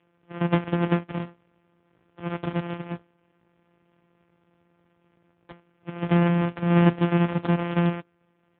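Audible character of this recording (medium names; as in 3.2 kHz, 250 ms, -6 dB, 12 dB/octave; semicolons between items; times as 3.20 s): a buzz of ramps at a fixed pitch in blocks of 256 samples; AMR-NB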